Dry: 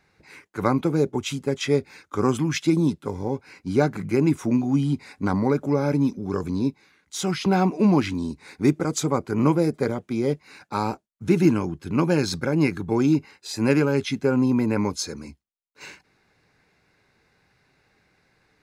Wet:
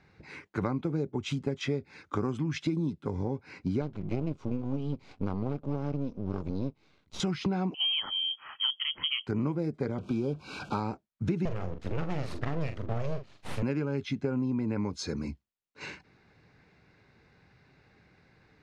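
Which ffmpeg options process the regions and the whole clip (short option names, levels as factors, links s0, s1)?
-filter_complex "[0:a]asettb=1/sr,asplit=3[s0][s1][s2];[s0]atrim=end=3.814[s3];[s1]atrim=start=3.81:end=7.2,asetpts=PTS-STARTPTS,afade=t=in:d=0.004:c=qsin,afade=t=out:st=3.386:d=0.004:c=qsin,lowpass=5200,aeval=exprs='max(val(0),0)':c=same,equalizer=f=1800:w=2.8:g=-10.5[s4];[s2]atrim=start=7.196[s5];[s3][s4]acrossfade=d=0.004:c1=hsin:c2=qsin[s6];[s6][s5]acrossfade=d=0.004:c1=qsin:c2=hsin,asettb=1/sr,asplit=3[s7][s8][s9];[s7]atrim=end=7.744[s10];[s8]atrim=start=7.74:end=9.27,asetpts=PTS-STARTPTS,afade=t=in:d=0.004:c=qsin,afade=t=out:st=1.526:d=0.004:c=qsin,lowshelf=f=120:t=q:w=1.5:g=-9,lowpass=f=2900:t=q:w=0.5098,lowpass=f=2900:t=q:w=0.6013,lowpass=f=2900:t=q:w=0.9,lowpass=f=2900:t=q:w=2.563,afreqshift=-3400[s11];[s9]atrim=start=9.266[s12];[s10][s11]acrossfade=d=0.004:c1=hsin:c2=qsin[s13];[s13][s12]acrossfade=d=0.004:c1=qsin:c2=hsin,asettb=1/sr,asplit=3[s14][s15][s16];[s14]atrim=end=9.984[s17];[s15]atrim=start=9.98:end=10.8,asetpts=PTS-STARTPTS,afade=t=in:d=0.004:c=qsin,afade=t=out:st=0.816:d=0.004:c=qsin,aeval=exprs='val(0)+0.5*0.0126*sgn(val(0))':c=same,acrusher=bits=6:mix=0:aa=0.5,asuperstop=centerf=1900:order=20:qfactor=2.9[s18];[s16]atrim=start=10.796[s19];[s17][s18]acrossfade=d=0.004:c1=hsin:c2=qsin[s20];[s20][s19]acrossfade=d=0.004:c1=qsin:c2=hsin,asettb=1/sr,asplit=3[s21][s22][s23];[s21]atrim=end=11.454[s24];[s22]atrim=start=11.45:end=13.63,asetpts=PTS-STARTPTS,afade=t=in:d=0.004:c=qsin,afade=t=out:st=2.176:d=0.004:c=qsin,highpass=66,aeval=exprs='abs(val(0))':c=same,asplit=2[s25][s26];[s26]adelay=43,volume=0.335[s27];[s25][s27]amix=inputs=2:normalize=0,atrim=end_sample=96138[s28];[s23]atrim=start=13.626[s29];[s24][s28]acrossfade=d=0.004:c1=hsin:c2=qsin[s30];[s30][s29]acrossfade=d=0.004:c1=qsin:c2=hsin,lowpass=4800,equalizer=f=110:w=0.39:g=6.5,acompressor=threshold=0.0398:ratio=6"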